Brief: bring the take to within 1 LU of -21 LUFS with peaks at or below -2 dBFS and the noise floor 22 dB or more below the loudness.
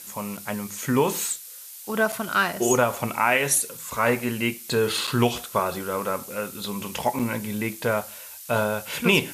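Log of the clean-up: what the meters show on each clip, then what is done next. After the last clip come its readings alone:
dropouts 4; longest dropout 6.3 ms; noise floor -42 dBFS; noise floor target -47 dBFS; loudness -25.0 LUFS; peak -6.5 dBFS; loudness target -21.0 LUFS
-> interpolate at 0.37/2.12/5.07/7.19, 6.3 ms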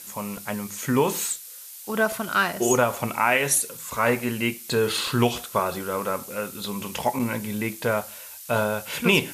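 dropouts 0; noise floor -42 dBFS; noise floor target -47 dBFS
-> denoiser 6 dB, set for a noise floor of -42 dBFS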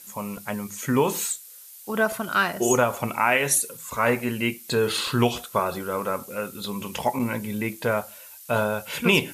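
noise floor -45 dBFS; noise floor target -47 dBFS
-> denoiser 6 dB, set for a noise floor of -45 dBFS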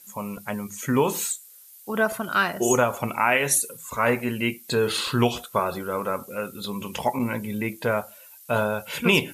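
noise floor -49 dBFS; loudness -25.0 LUFS; peak -6.5 dBFS; loudness target -21.0 LUFS
-> gain +4 dB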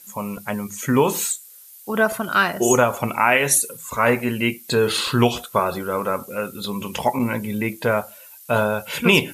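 loudness -21.0 LUFS; peak -2.5 dBFS; noise floor -45 dBFS

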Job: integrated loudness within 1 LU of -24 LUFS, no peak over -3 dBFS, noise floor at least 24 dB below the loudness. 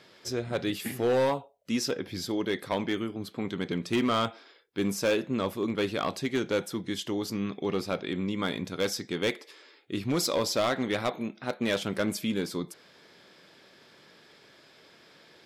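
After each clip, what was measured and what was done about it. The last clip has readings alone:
clipped 0.9%; flat tops at -20.5 dBFS; loudness -30.5 LUFS; peak -20.5 dBFS; loudness target -24.0 LUFS
-> clip repair -20.5 dBFS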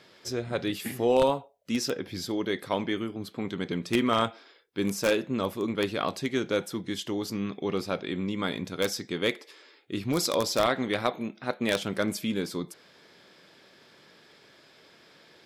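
clipped 0.0%; loudness -29.5 LUFS; peak -11.5 dBFS; loudness target -24.0 LUFS
-> gain +5.5 dB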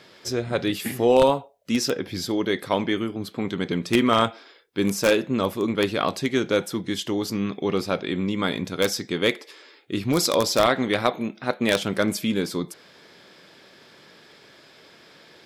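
loudness -24.0 LUFS; peak -6.0 dBFS; noise floor -52 dBFS

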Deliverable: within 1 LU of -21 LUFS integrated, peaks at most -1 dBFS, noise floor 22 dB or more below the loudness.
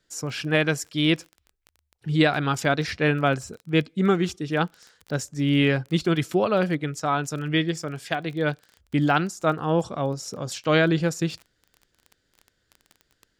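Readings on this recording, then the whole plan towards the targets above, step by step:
ticks 20/s; loudness -24.5 LUFS; peak -7.0 dBFS; loudness target -21.0 LUFS
-> de-click; gain +3.5 dB

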